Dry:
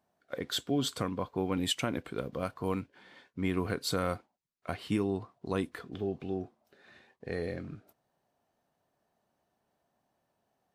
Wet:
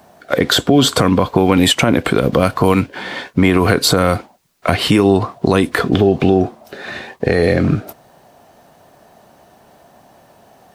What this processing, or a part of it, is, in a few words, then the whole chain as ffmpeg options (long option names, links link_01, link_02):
mastering chain: -filter_complex "[0:a]equalizer=frequency=680:width_type=o:width=0.77:gain=2.5,acrossover=split=420|1500[link_01][link_02][link_03];[link_01]acompressor=threshold=-36dB:ratio=4[link_04];[link_02]acompressor=threshold=-40dB:ratio=4[link_05];[link_03]acompressor=threshold=-43dB:ratio=4[link_06];[link_04][link_05][link_06]amix=inputs=3:normalize=0,acompressor=threshold=-37dB:ratio=2.5,asoftclip=type=hard:threshold=-26.5dB,alimiter=level_in=30.5dB:limit=-1dB:release=50:level=0:latency=1,volume=-1dB"